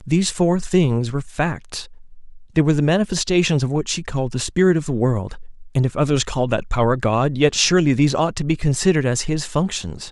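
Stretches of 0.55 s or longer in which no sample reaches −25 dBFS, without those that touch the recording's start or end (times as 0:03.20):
0:01.83–0:02.56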